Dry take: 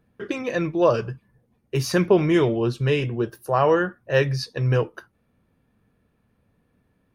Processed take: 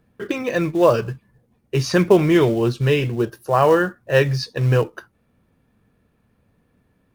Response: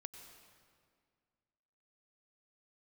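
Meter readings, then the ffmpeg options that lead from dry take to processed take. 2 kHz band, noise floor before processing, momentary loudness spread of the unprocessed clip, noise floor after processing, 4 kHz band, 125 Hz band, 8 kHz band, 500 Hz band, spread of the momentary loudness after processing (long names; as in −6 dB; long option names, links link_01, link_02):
+3.5 dB, −68 dBFS, 10 LU, −65 dBFS, +3.5 dB, +3.5 dB, +2.5 dB, +3.5 dB, 10 LU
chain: -filter_complex "[0:a]acrossover=split=7700[link_01][link_02];[link_02]acompressor=threshold=-51dB:ratio=4:attack=1:release=60[link_03];[link_01][link_03]amix=inputs=2:normalize=0,asplit=2[link_04][link_05];[link_05]acrusher=bits=4:mode=log:mix=0:aa=0.000001,volume=-6dB[link_06];[link_04][link_06]amix=inputs=2:normalize=0"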